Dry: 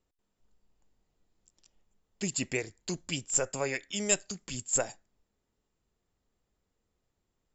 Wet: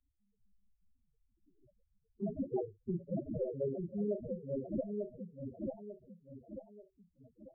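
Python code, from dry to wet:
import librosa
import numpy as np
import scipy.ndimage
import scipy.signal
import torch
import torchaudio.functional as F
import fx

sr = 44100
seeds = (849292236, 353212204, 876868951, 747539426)

y = fx.rattle_buzz(x, sr, strikes_db=-39.0, level_db=-17.0)
y = fx.rider(y, sr, range_db=10, speed_s=0.5)
y = fx.high_shelf(y, sr, hz=3200.0, db=-11.5, at=(3.52, 4.69), fade=0.02)
y = fx.room_flutter(y, sr, wall_m=5.0, rt60_s=0.22)
y = fx.sample_hold(y, sr, seeds[0], rate_hz=1500.0, jitter_pct=20)
y = fx.echo_feedback(y, sr, ms=893, feedback_pct=26, wet_db=-5.0)
y = fx.spec_topn(y, sr, count=4)
y = fx.tilt_eq(y, sr, slope=3.0)
y = fx.band_squash(y, sr, depth_pct=40)
y = y * librosa.db_to_amplitude(5.0)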